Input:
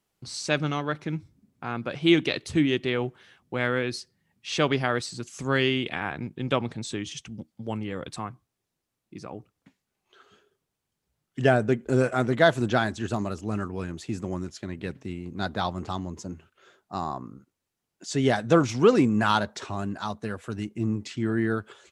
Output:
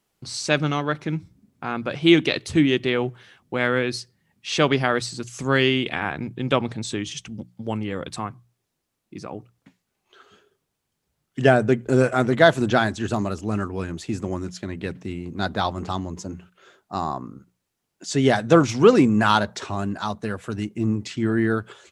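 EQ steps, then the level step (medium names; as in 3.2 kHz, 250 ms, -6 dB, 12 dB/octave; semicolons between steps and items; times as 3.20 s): hum notches 60/120/180 Hz; +4.5 dB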